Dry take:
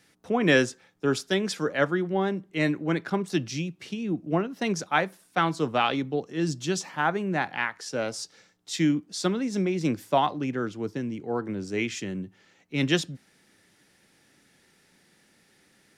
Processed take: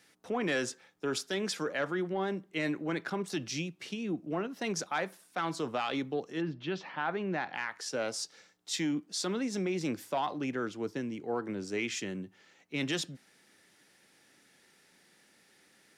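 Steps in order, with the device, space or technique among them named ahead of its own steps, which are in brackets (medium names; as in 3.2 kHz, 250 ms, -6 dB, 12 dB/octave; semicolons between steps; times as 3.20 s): soft clipper into limiter (saturation -13 dBFS, distortion -21 dB; peak limiter -21.5 dBFS, peak gain reduction 7.5 dB); 6.40–7.53 s: low-pass 2.5 kHz -> 6.2 kHz 24 dB/octave; bass shelf 170 Hz -12 dB; trim -1 dB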